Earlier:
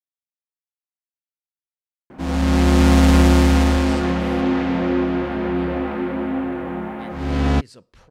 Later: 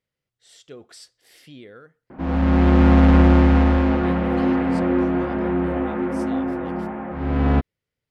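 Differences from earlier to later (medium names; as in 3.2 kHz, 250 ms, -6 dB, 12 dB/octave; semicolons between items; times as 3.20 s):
speech: entry -2.95 s; background: add low-pass 2 kHz 12 dB/octave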